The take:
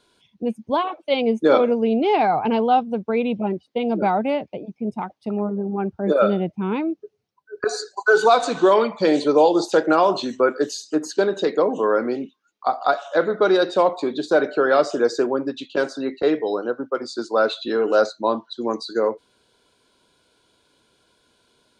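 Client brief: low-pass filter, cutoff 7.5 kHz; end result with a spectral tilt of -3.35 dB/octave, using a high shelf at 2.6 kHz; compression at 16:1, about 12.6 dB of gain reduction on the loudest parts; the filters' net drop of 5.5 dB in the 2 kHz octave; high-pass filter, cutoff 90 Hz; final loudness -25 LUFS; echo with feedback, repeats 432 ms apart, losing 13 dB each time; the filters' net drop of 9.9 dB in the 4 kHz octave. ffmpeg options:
-af "highpass=90,lowpass=7500,equalizer=f=2000:t=o:g=-6,highshelf=f=2600:g=-4,equalizer=f=4000:t=o:g=-6.5,acompressor=threshold=0.0631:ratio=16,aecho=1:1:432|864|1296:0.224|0.0493|0.0108,volume=1.78"

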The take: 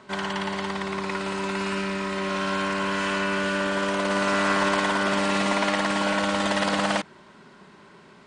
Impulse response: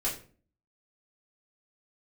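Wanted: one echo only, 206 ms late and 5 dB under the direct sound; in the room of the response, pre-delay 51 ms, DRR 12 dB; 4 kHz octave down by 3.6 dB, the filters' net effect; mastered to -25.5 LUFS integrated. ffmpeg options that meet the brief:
-filter_complex "[0:a]equalizer=f=4000:t=o:g=-5,aecho=1:1:206:0.562,asplit=2[s0][s1];[1:a]atrim=start_sample=2205,adelay=51[s2];[s1][s2]afir=irnorm=-1:irlink=0,volume=0.126[s3];[s0][s3]amix=inputs=2:normalize=0,volume=0.794"

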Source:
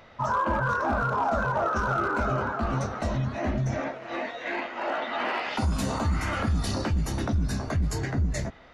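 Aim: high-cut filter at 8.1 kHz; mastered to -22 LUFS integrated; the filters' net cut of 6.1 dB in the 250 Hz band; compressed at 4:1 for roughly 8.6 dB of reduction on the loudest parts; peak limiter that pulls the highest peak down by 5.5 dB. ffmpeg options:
-af "lowpass=8100,equalizer=f=250:t=o:g=-8.5,acompressor=threshold=0.0251:ratio=4,volume=5.31,alimiter=limit=0.211:level=0:latency=1"

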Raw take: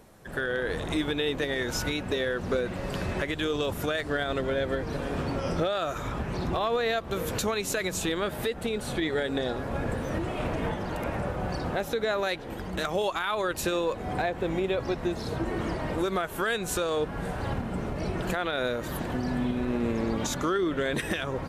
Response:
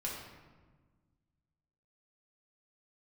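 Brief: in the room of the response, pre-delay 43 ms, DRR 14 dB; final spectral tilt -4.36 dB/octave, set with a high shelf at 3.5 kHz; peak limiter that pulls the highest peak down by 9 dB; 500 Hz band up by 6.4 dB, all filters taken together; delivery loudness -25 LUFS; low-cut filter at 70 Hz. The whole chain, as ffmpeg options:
-filter_complex "[0:a]highpass=70,equalizer=f=500:t=o:g=7.5,highshelf=f=3500:g=8,alimiter=limit=0.106:level=0:latency=1,asplit=2[s0][s1];[1:a]atrim=start_sample=2205,adelay=43[s2];[s1][s2]afir=irnorm=-1:irlink=0,volume=0.158[s3];[s0][s3]amix=inputs=2:normalize=0,volume=1.5"

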